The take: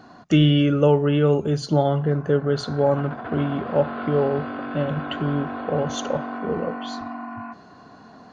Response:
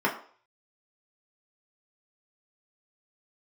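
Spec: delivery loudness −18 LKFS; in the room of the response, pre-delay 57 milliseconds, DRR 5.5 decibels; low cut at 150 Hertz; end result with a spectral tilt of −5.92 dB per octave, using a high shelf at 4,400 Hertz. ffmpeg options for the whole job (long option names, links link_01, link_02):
-filter_complex "[0:a]highpass=150,highshelf=frequency=4400:gain=6.5,asplit=2[link_01][link_02];[1:a]atrim=start_sample=2205,adelay=57[link_03];[link_02][link_03]afir=irnorm=-1:irlink=0,volume=-19dB[link_04];[link_01][link_04]amix=inputs=2:normalize=0,volume=3dB"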